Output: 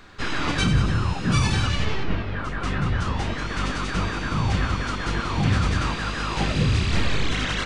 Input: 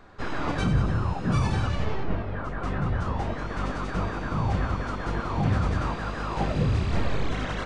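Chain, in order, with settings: EQ curve 320 Hz 0 dB, 660 Hz -5 dB, 2900 Hz +9 dB; gain +3 dB

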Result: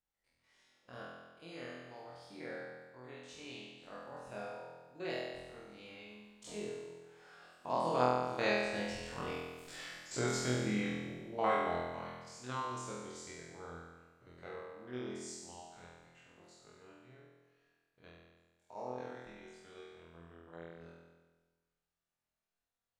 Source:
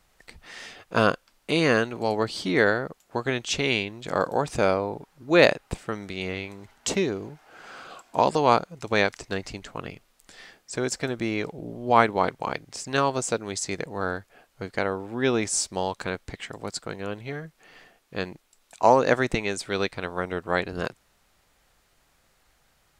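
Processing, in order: stepped spectrum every 50 ms; Doppler pass-by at 9.66, 21 m/s, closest 7 m; flutter echo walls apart 4.1 m, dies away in 1.3 s; gain -2.5 dB

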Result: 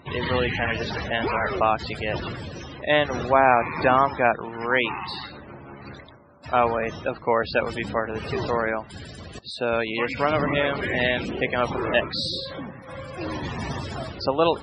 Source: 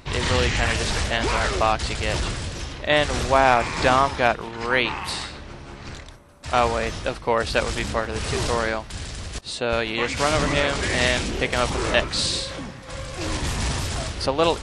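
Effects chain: loudest bins only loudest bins 64; HPF 120 Hz 12 dB/oct; high shelf 4700 Hz -5.5 dB

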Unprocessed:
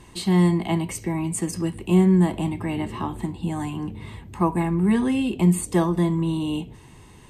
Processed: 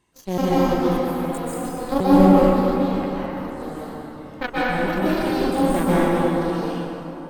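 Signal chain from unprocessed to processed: trilling pitch shifter +7 st, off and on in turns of 0.125 s; low shelf 130 Hz -9.5 dB; added harmonics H 3 -12 dB, 4 -19 dB, 5 -41 dB, 7 -32 dB, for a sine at -8 dBFS; plate-style reverb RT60 3.6 s, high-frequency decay 0.45×, pre-delay 0.115 s, DRR -9.5 dB; gain +1 dB

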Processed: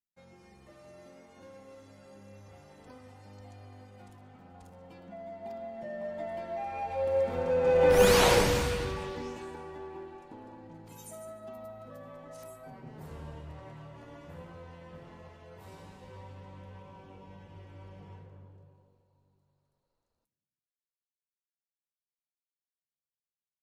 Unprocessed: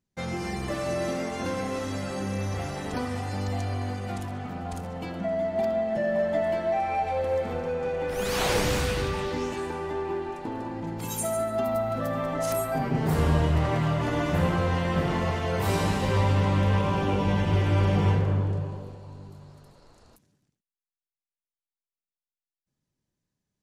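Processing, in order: Doppler pass-by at 7.99, 8 m/s, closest 1.5 m; small resonant body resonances 530/940 Hz, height 6 dB; gain +7 dB

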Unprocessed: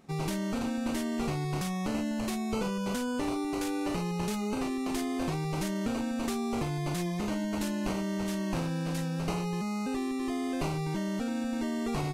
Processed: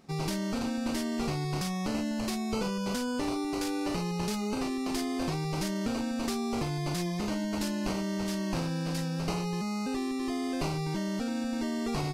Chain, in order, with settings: bell 4900 Hz +6.5 dB 0.5 oct

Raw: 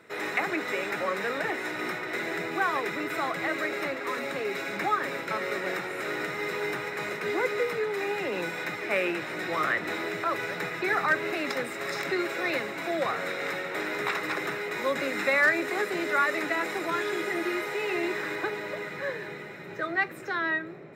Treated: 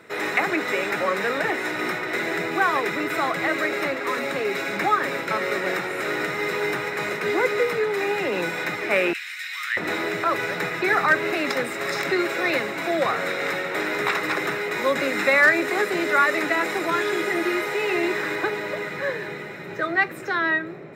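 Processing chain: 9.13–9.77 inverse Chebyshev high-pass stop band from 320 Hz, stop band 80 dB; gain +6 dB

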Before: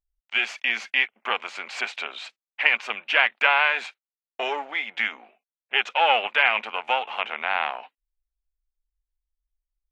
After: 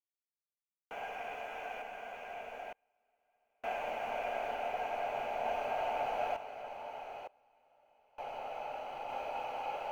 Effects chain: slices in reverse order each 82 ms, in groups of 8; EQ curve 120 Hz 0 dB, 270 Hz -7 dB, 1000 Hz -14 dB, 1700 Hz -8 dB, 3000 Hz -5 dB; compressor 2.5:1, threshold -27 dBFS, peak gain reduction 5.5 dB; LFO low-pass square 4.1 Hz 850–2300 Hz; companded quantiser 8-bit; band shelf 2600 Hz -15.5 dB; tube stage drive 28 dB, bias 0.2; Paulstretch 39×, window 0.50 s, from 6.11; random-step tremolo 1.1 Hz, depth 100%; gain +1.5 dB

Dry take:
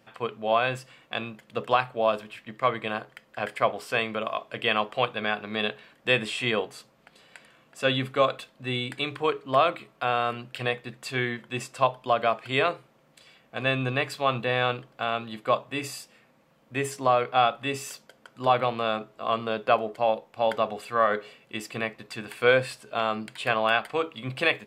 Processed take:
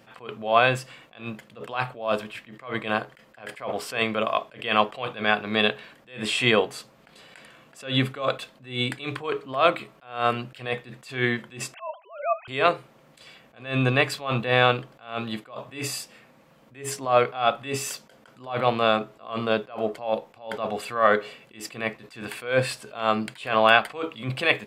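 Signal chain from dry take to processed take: 11.74–12.48 sine-wave speech; attack slew limiter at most 140 dB/s; gain +6.5 dB

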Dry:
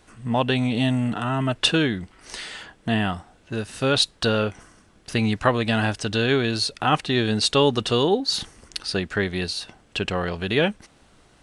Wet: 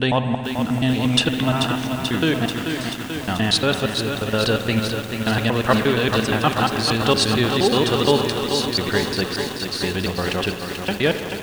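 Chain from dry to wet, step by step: slices in reverse order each 0.117 s, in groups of 5; spring tank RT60 2.9 s, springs 54 ms, chirp 30 ms, DRR 8 dB; lo-fi delay 0.436 s, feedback 80%, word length 6-bit, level -6 dB; gain +1.5 dB

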